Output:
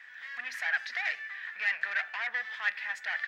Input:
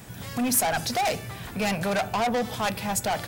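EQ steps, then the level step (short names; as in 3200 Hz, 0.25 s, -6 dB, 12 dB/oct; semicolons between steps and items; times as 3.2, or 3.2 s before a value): resonant high-pass 1800 Hz, resonance Q 9.1; air absorption 230 m; -6.5 dB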